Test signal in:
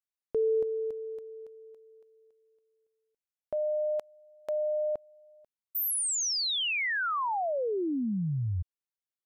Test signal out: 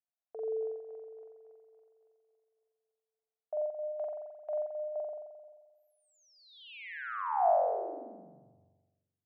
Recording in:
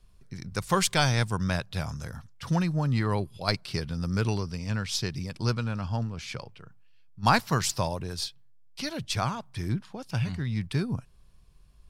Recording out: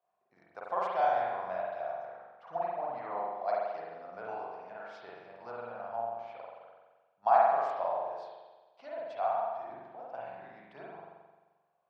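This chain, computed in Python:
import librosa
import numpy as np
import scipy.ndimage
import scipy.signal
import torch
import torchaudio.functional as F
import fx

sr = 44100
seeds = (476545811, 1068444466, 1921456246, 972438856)

y = fx.ladder_bandpass(x, sr, hz=740.0, resonance_pct=75)
y = fx.rev_spring(y, sr, rt60_s=1.3, pass_ms=(43,), chirp_ms=30, drr_db=-5.0)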